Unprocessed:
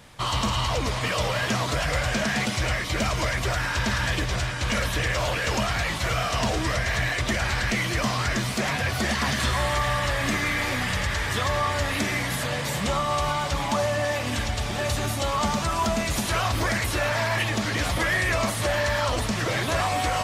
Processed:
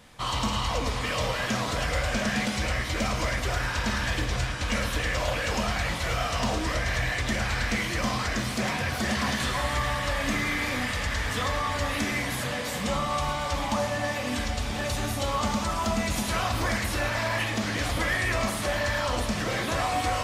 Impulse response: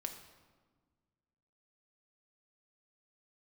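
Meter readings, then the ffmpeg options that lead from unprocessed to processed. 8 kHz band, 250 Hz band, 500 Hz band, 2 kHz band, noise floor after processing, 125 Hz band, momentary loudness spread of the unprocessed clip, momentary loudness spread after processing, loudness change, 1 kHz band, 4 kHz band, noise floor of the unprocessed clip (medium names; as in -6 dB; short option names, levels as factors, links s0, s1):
-3.0 dB, -1.0 dB, -3.0 dB, -3.0 dB, -31 dBFS, -3.5 dB, 2 LU, 2 LU, -2.5 dB, -2.5 dB, -3.0 dB, -29 dBFS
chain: -filter_complex "[1:a]atrim=start_sample=2205,asetrate=48510,aresample=44100[s0];[0:a][s0]afir=irnorm=-1:irlink=0"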